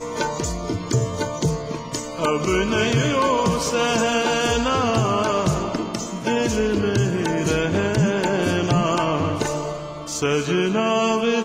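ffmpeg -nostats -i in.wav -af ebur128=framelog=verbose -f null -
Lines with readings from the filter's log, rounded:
Integrated loudness:
  I:         -21.4 LUFS
  Threshold: -31.4 LUFS
Loudness range:
  LRA:         1.8 LU
  Threshold: -41.1 LUFS
  LRA low:   -21.7 LUFS
  LRA high:  -19.9 LUFS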